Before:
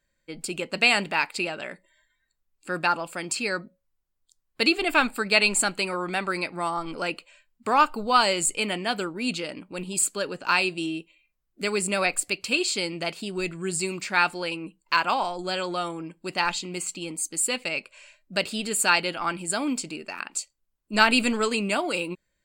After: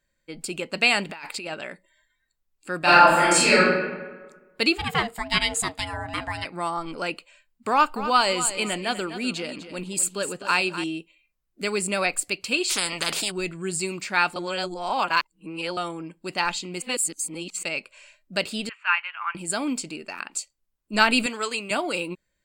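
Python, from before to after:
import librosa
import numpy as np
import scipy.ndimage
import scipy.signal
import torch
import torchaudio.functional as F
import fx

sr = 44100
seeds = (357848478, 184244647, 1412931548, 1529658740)

y = fx.over_compress(x, sr, threshold_db=-35.0, ratio=-1.0, at=(1.09, 1.54))
y = fx.reverb_throw(y, sr, start_s=2.79, length_s=0.81, rt60_s=1.3, drr_db=-12.0)
y = fx.ring_mod(y, sr, carrier_hz=460.0, at=(4.77, 6.44), fade=0.02)
y = fx.echo_feedback(y, sr, ms=250, feedback_pct=30, wet_db=-12.0, at=(7.71, 10.84))
y = fx.spectral_comp(y, sr, ratio=10.0, at=(12.69, 13.3), fade=0.02)
y = fx.ellip_bandpass(y, sr, low_hz=1000.0, high_hz=2700.0, order=3, stop_db=70, at=(18.69, 19.35))
y = fx.highpass(y, sr, hz=770.0, slope=6, at=(21.26, 21.71))
y = fx.edit(y, sr, fx.reverse_span(start_s=14.36, length_s=1.41),
    fx.reverse_span(start_s=16.82, length_s=0.81), tone=tone)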